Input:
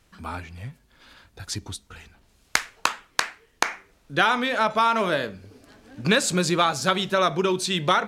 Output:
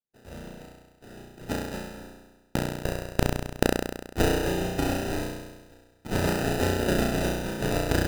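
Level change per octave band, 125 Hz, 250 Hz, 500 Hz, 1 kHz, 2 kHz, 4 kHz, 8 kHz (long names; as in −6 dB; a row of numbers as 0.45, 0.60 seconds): +2.5, +0.5, −2.0, −10.5, −8.0, −9.0, −6.5 decibels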